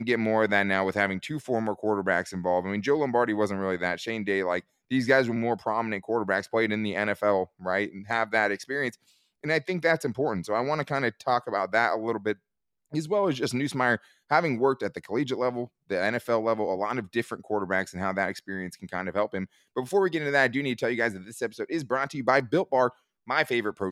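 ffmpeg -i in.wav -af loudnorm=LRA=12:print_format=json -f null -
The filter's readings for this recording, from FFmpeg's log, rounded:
"input_i" : "-27.2",
"input_tp" : "-6.5",
"input_lra" : "2.5",
"input_thresh" : "-37.3",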